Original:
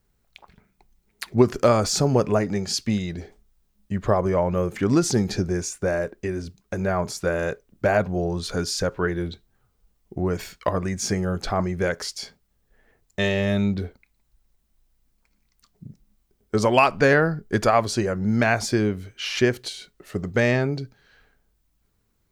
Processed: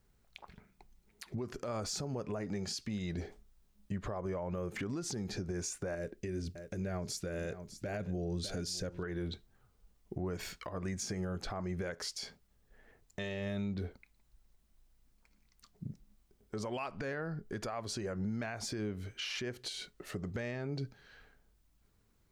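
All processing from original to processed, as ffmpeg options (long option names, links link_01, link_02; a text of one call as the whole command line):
ffmpeg -i in.wav -filter_complex "[0:a]asettb=1/sr,asplit=3[link_01][link_02][link_03];[link_01]atrim=end=5.954[link_04];[link_02]atrim=start=5.95:end=9.03,asetpts=PTS-STARTPTS,afade=type=in:duration=0.004:curve=qsin,afade=type=out:start_time=3.076:duration=0.004:curve=qsin,equalizer=frequency=1000:width=1:gain=-12,aecho=1:1:603:0.15,atrim=end_sample=135828[link_05];[link_03]atrim=start=9.026[link_06];[link_04][link_05]acrossfade=duration=0.004:curve1=hsin:curve2=qsin[link_07];[link_07][link_06]acrossfade=duration=0.004:curve1=qsin:curve2=hsin,highshelf=frequency=12000:gain=-4.5,acompressor=threshold=-30dB:ratio=3,alimiter=level_in=4dB:limit=-24dB:level=0:latency=1:release=150,volume=-4dB,volume=-1.5dB" out.wav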